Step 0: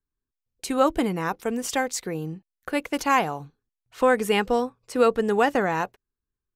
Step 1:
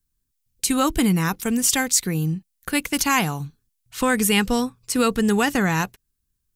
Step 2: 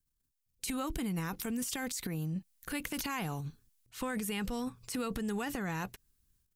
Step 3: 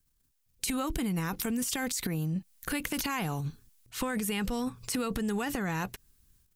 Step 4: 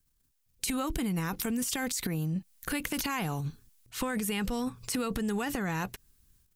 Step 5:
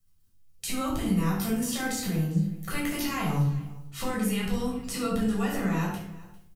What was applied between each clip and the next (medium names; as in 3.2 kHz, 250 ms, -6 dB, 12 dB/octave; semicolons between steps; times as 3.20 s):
FFT filter 180 Hz 0 dB, 570 Hz -16 dB, 990 Hz -10 dB, 10 kHz +6 dB; in parallel at 0 dB: peak limiter -21.5 dBFS, peak gain reduction 8 dB; on the sum: trim +5 dB
transient shaper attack -4 dB, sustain +11 dB; compression, threshold -24 dBFS, peak gain reduction 9.5 dB; dynamic bell 6.4 kHz, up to -4 dB, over -40 dBFS, Q 0.81; trim -8.5 dB
compression 2:1, threshold -40 dBFS, peak gain reduction 5.5 dB; trim +8.5 dB
no audible change
feedback comb 98 Hz, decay 0.58 s, harmonics all, mix 60%; delay 399 ms -21 dB; simulated room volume 900 m³, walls furnished, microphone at 6.5 m